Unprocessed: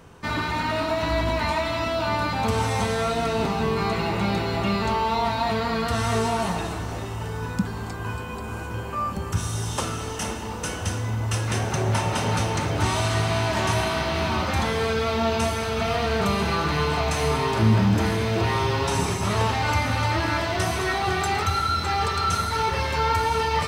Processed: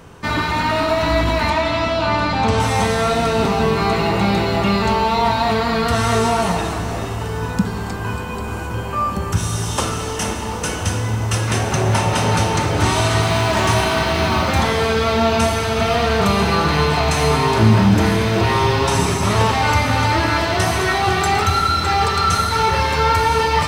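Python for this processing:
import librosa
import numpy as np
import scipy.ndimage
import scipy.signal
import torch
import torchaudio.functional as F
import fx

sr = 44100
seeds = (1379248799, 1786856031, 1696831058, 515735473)

y = fx.lowpass(x, sr, hz=6400.0, slope=12, at=(1.5, 2.6))
y = fx.quant_float(y, sr, bits=4, at=(13.23, 14.6))
y = fx.rev_schroeder(y, sr, rt60_s=3.2, comb_ms=30, drr_db=9.5)
y = y * 10.0 ** (6.5 / 20.0)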